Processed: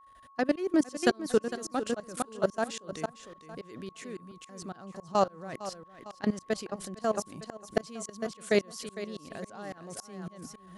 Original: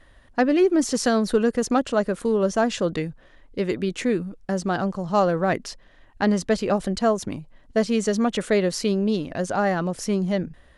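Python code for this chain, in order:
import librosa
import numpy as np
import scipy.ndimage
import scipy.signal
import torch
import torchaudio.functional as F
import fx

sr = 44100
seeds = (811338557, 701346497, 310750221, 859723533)

y = fx.highpass(x, sr, hz=110.0, slope=6)
y = fx.high_shelf(y, sr, hz=5700.0, db=11.5)
y = fx.level_steps(y, sr, step_db=19)
y = fx.echo_feedback(y, sr, ms=455, feedback_pct=20, wet_db=-8.0)
y = fx.tremolo_shape(y, sr, shape='saw_up', hz=3.6, depth_pct=100)
y = y + 10.0 ** (-54.0 / 20.0) * np.sin(2.0 * np.pi * 1100.0 * np.arange(len(y)) / sr)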